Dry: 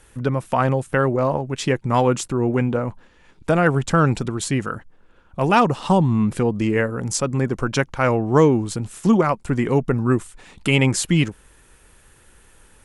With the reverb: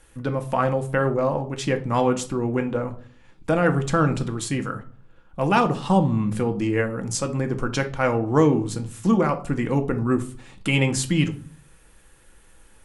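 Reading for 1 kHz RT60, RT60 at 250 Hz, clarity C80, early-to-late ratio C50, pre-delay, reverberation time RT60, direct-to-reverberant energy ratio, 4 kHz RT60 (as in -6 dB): 0.45 s, 0.65 s, 20.0 dB, 14.5 dB, 3 ms, 0.45 s, 6.0 dB, 0.30 s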